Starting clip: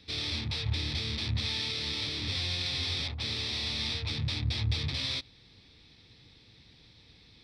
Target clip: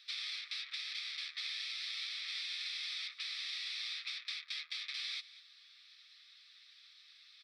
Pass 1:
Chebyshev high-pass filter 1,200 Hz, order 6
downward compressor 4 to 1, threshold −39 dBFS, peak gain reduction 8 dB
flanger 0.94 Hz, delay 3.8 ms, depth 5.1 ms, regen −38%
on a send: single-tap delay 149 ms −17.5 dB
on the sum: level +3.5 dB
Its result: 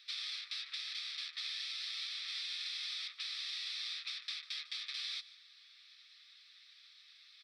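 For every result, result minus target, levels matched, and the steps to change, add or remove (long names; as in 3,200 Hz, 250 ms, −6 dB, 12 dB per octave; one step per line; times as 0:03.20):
echo 52 ms early; 2,000 Hz band −2.5 dB
change: single-tap delay 201 ms −17.5 dB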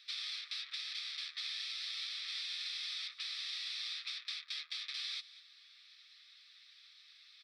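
2,000 Hz band −2.5 dB
add after Chebyshev high-pass filter: dynamic equaliser 2,200 Hz, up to +5 dB, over −52 dBFS, Q 3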